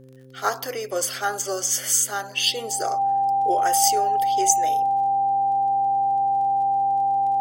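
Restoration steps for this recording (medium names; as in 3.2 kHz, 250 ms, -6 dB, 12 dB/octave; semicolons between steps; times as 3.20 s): de-click; de-hum 130.6 Hz, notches 4; band-stop 790 Hz, Q 30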